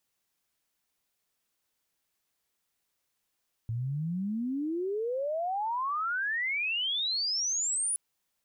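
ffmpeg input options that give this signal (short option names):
-f lavfi -i "aevalsrc='pow(10,(-29.5+2.5*t/4.27)/20)*sin(2*PI*110*4.27/log(10000/110)*(exp(log(10000/110)*t/4.27)-1))':d=4.27:s=44100"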